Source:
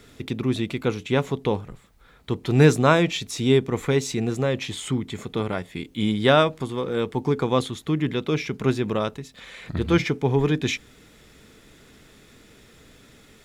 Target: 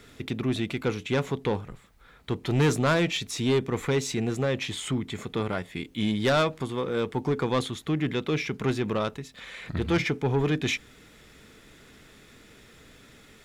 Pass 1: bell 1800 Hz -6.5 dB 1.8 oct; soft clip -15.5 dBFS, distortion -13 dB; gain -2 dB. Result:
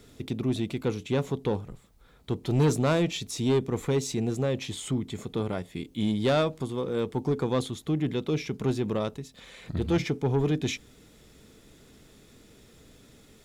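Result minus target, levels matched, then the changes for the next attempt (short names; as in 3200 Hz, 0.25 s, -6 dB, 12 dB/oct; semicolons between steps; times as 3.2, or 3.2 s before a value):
2000 Hz band -6.5 dB
change: bell 1800 Hz +3 dB 1.8 oct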